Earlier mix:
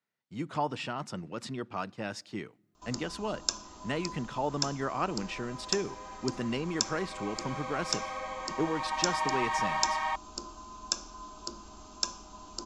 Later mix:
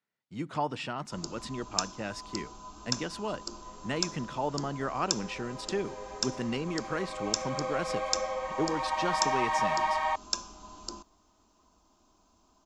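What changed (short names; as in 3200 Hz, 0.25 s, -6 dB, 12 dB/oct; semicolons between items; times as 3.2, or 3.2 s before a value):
first sound: entry -1.70 s; second sound: remove HPF 860 Hz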